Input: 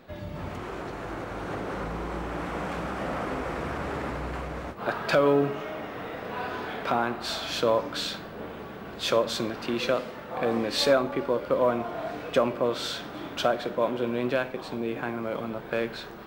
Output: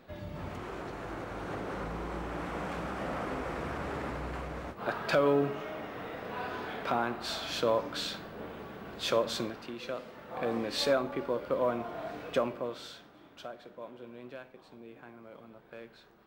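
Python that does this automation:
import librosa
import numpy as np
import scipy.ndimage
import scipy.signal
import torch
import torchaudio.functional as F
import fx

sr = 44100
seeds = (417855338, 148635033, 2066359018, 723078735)

y = fx.gain(x, sr, db=fx.line((9.41, -4.5), (9.77, -14.0), (10.38, -6.0), (12.39, -6.0), (13.17, -19.0)))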